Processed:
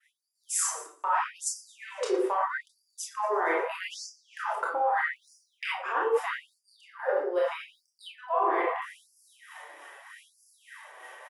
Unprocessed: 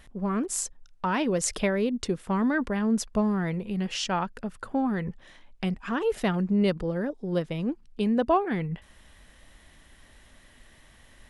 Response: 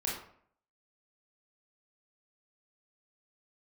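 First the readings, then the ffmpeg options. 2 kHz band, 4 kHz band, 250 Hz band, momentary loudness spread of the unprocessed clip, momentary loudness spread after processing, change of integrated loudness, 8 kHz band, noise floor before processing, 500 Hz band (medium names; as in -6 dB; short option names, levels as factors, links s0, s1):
+2.5 dB, -5.0 dB, -16.5 dB, 8 LU, 20 LU, -2.0 dB, +1.0 dB, -56 dBFS, -1.0 dB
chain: -filter_complex "[0:a]equalizer=f=125:t=o:w=1:g=-12,equalizer=f=250:t=o:w=1:g=-11,equalizer=f=500:t=o:w=1:g=9,equalizer=f=1000:t=o:w=1:g=11,equalizer=f=2000:t=o:w=1:g=4,equalizer=f=4000:t=o:w=1:g=-5,equalizer=f=8000:t=o:w=1:g=-6,agate=range=0.0224:threshold=0.00501:ratio=3:detection=peak,aecho=1:1:116|232|348|464|580:0.119|0.0689|0.04|0.0232|0.0134,acrossover=split=700[s0][s1];[s0]aeval=exprs='val(0)*(1-0.5/2+0.5/2*cos(2*PI*3.3*n/s))':c=same[s2];[s1]aeval=exprs='val(0)*(1-0.5/2-0.5/2*cos(2*PI*3.3*n/s))':c=same[s3];[s2][s3]amix=inputs=2:normalize=0,dynaudnorm=f=100:g=5:m=2.82[s4];[1:a]atrim=start_sample=2205[s5];[s4][s5]afir=irnorm=-1:irlink=0,flanger=delay=5.8:depth=2.2:regen=54:speed=0.23:shape=sinusoidal,bandreject=f=4200:w=10,areverse,acompressor=threshold=0.0501:ratio=8,areverse,bass=f=250:g=5,treble=f=4000:g=5,afftfilt=real='re*gte(b*sr/1024,270*pow(4700/270,0.5+0.5*sin(2*PI*0.79*pts/sr)))':imag='im*gte(b*sr/1024,270*pow(4700/270,0.5+0.5*sin(2*PI*0.79*pts/sr)))':win_size=1024:overlap=0.75,volume=1.33"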